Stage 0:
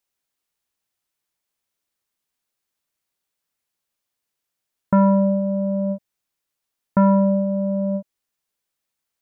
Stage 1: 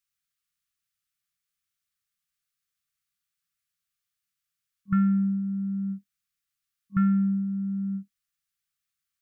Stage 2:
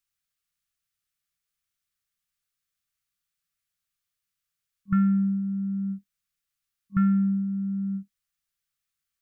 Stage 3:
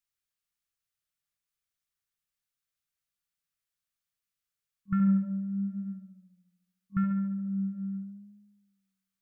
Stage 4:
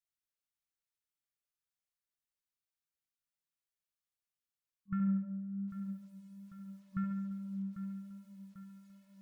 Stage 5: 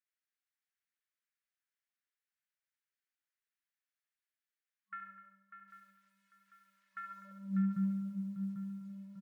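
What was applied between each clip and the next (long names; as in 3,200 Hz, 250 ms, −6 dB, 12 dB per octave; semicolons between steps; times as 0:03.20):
brick-wall band-stop 200–1,100 Hz; level −3.5 dB
low-shelf EQ 63 Hz +7 dB
tape delay 71 ms, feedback 80%, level −5.5 dB, low-pass 1,100 Hz; level −5 dB
feedback echo at a low word length 795 ms, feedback 55%, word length 9 bits, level −12 dB; level −8 dB
high-pass filter sweep 1,700 Hz → 160 Hz, 0:07.03–0:07.62; multi-tap delay 251/596 ms −13/−8.5 dB; one half of a high-frequency compander decoder only; level +1 dB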